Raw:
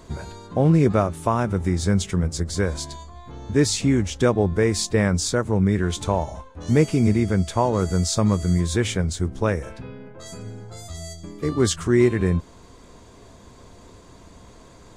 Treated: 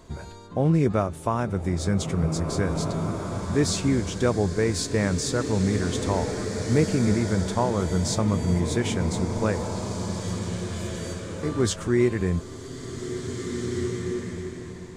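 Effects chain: swelling reverb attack 2090 ms, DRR 4.5 dB; trim -4 dB

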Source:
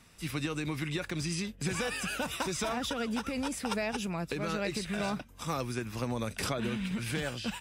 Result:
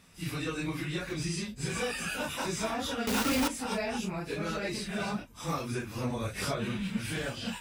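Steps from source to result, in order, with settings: phase randomisation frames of 100 ms; 3.07–3.48 s: companded quantiser 2-bit

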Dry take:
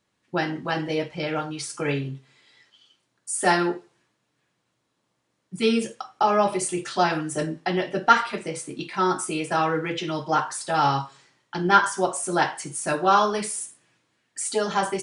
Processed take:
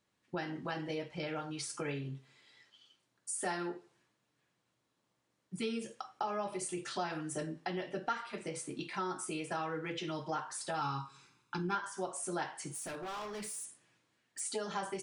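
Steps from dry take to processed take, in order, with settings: 10.81–11.75 s: comb 0.8 ms, depth 89%; compression 3:1, threshold -31 dBFS, peak gain reduction 15.5 dB; 12.71–14.40 s: hard clipper -33.5 dBFS, distortion -16 dB; trim -6 dB

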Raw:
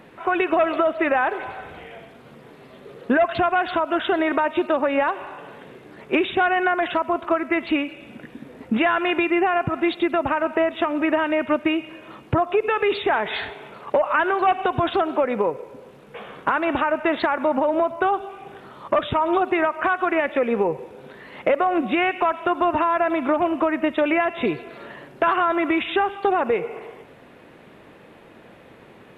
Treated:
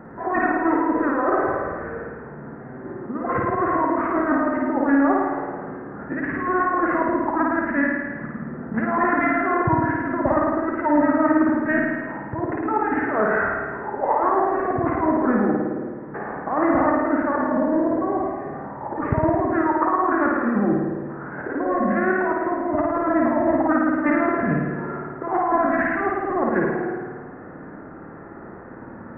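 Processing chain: steep low-pass 2.5 kHz 72 dB/octave; compressor with a negative ratio -23 dBFS, ratio -0.5; formant shift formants -5 st; flutter echo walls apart 9.3 m, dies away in 1.4 s; trim +1.5 dB

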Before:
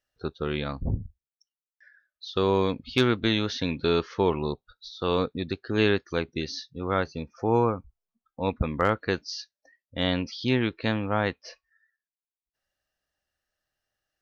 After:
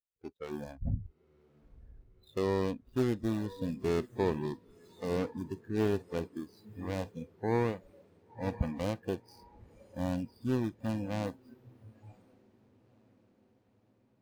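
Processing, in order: median filter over 41 samples; echo that smears into a reverb 1011 ms, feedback 58%, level -12 dB; spectral noise reduction 16 dB; trim -5 dB

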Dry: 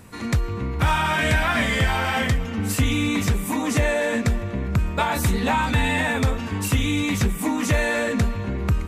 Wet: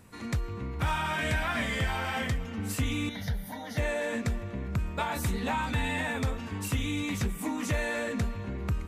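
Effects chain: 3.09–3.78 s: static phaser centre 1.7 kHz, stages 8; trim -9 dB

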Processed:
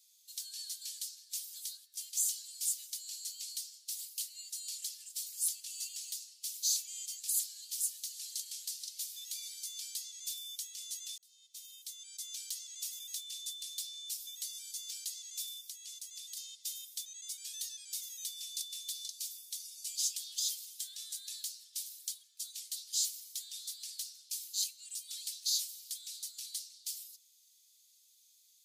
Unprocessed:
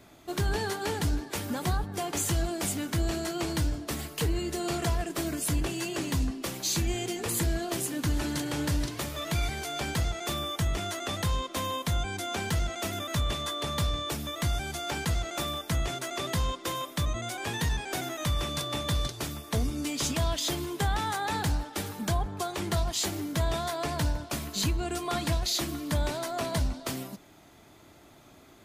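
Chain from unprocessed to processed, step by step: inverse Chebyshev high-pass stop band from 760 Hz, stop band 80 dB; 11.18–12.33 s: fade in linear; 15.55–16.37 s: compression, threshold -43 dBFS, peak gain reduction 7.5 dB

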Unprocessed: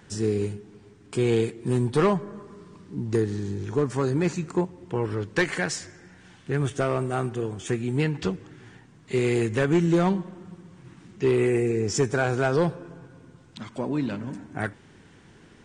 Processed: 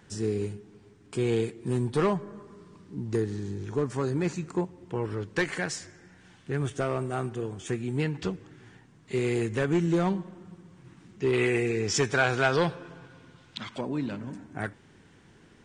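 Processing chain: 11.33–13.81 s: FFT filter 370 Hz 0 dB, 3.5 kHz +12 dB, 8.1 kHz +2 dB; trim -4 dB

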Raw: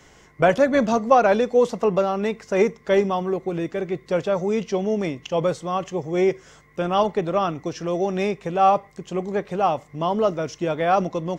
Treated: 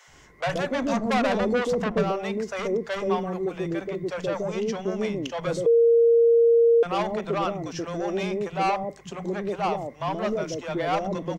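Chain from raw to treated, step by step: 0.97–1.99 s: bass shelf 440 Hz +10.5 dB; saturation -18 dBFS, distortion -8 dB; three bands offset in time highs, lows, mids 70/130 ms, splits 190/580 Hz; 5.66–6.83 s: bleep 465 Hz -14 dBFS

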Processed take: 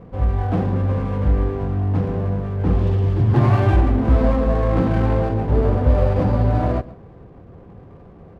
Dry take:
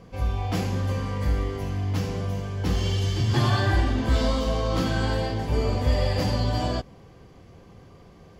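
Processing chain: low-pass 1.1 kHz 12 dB/octave; delay 127 ms -19 dB; sliding maximum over 9 samples; trim +7 dB

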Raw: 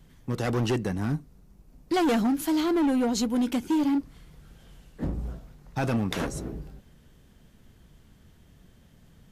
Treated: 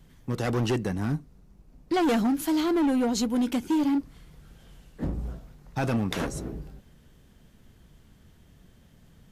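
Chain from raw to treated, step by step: 1.17–2.02 s: treble shelf 11 kHz -> 5.8 kHz -7.5 dB

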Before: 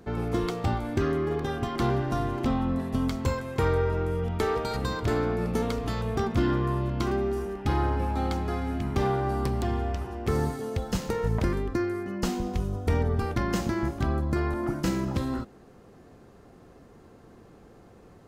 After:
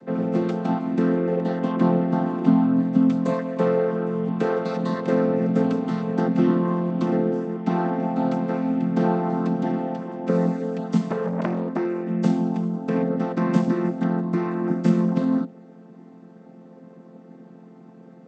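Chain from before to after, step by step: vocoder on a held chord major triad, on F3; 1.72–2.26 s: tone controls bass +2 dB, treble -6 dB; 11.10–11.85 s: transformer saturation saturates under 960 Hz; trim +7.5 dB

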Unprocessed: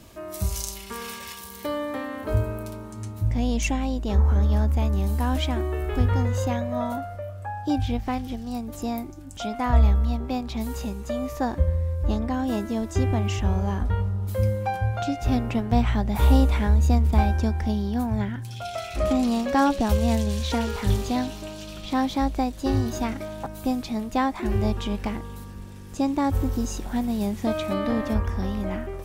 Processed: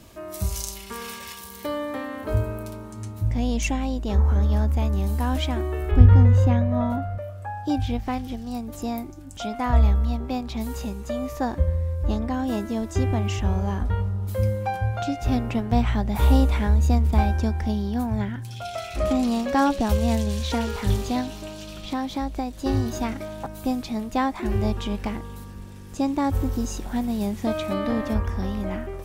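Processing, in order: 5.91–7.18 s: tone controls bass +10 dB, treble -10 dB; 21.20–22.66 s: compression 2.5:1, threshold -25 dBFS, peak gain reduction 5 dB

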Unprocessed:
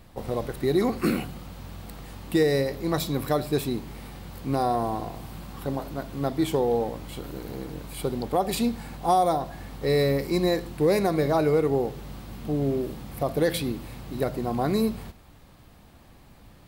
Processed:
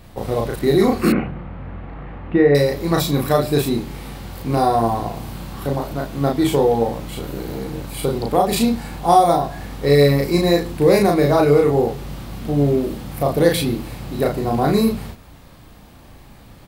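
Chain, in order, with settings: doubling 35 ms -2 dB; 1.12–2.55 s: low-pass 2.2 kHz 24 dB/octave; trim +6 dB

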